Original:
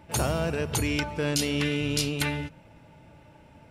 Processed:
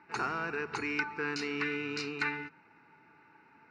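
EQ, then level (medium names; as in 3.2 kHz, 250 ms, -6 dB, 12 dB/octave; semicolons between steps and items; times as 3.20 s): cabinet simulation 390–4400 Hz, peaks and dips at 410 Hz +6 dB, 1.4 kHz +4 dB, 2.5 kHz +4 dB, 3.9 kHz +5 dB; static phaser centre 1.4 kHz, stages 4; 0.0 dB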